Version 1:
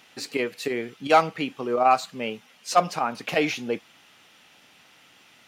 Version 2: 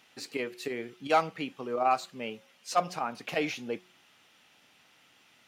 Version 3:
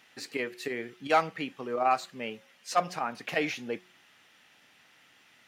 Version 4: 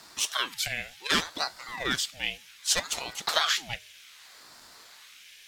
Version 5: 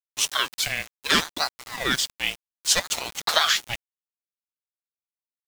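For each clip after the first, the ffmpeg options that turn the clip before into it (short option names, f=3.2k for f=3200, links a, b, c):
-af "bandreject=f=181.9:t=h:w=4,bandreject=f=363.8:t=h:w=4,bandreject=f=545.7:t=h:w=4,bandreject=f=727.6:t=h:w=4,volume=-7dB"
-af "equalizer=f=1.8k:t=o:w=0.47:g=6"
-af "aexciter=amount=9.2:drive=3.9:freq=2k,aeval=exprs='val(0)*sin(2*PI*990*n/s+990*0.75/0.65*sin(2*PI*0.65*n/s))':c=same,volume=-4dB"
-af "aeval=exprs='val(0)*gte(abs(val(0)),0.0178)':c=same,volume=5dB"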